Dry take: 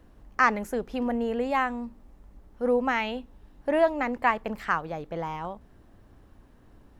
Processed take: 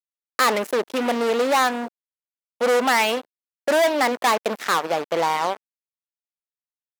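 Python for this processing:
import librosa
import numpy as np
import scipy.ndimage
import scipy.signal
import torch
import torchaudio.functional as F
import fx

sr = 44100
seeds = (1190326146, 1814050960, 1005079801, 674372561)

y = fx.fuzz(x, sr, gain_db=31.0, gate_db=-40.0)
y = scipy.signal.sosfilt(scipy.signal.butter(2, 370.0, 'highpass', fs=sr, output='sos'), y)
y = fx.high_shelf(y, sr, hz=8800.0, db=3.5)
y = y * librosa.db_to_amplitude(-1.5)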